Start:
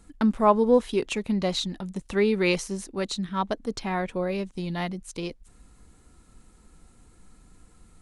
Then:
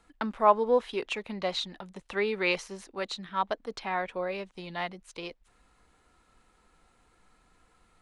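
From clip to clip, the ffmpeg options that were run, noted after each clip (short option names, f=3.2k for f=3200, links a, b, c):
-filter_complex "[0:a]acrossover=split=480 4300:gain=0.2 1 0.224[a][b][c];[a][b][c]amix=inputs=3:normalize=0"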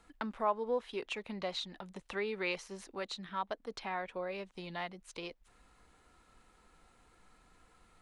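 -af "acompressor=threshold=-47dB:ratio=1.5"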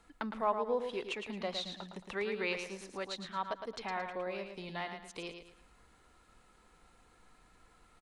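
-af "aecho=1:1:111|222|333|444:0.447|0.152|0.0516|0.0176"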